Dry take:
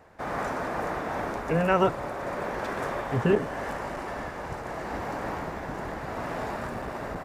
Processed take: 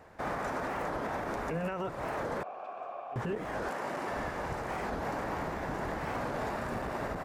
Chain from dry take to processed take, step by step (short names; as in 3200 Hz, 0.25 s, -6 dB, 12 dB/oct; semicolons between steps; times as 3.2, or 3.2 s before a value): compressor 6:1, threshold -28 dBFS, peak gain reduction 11 dB; 2.43–3.16 vowel filter a; limiter -26 dBFS, peak gain reduction 7.5 dB; 3.68–4.11 HPF 260 Hz -> 110 Hz 12 dB/oct; record warp 45 rpm, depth 250 cents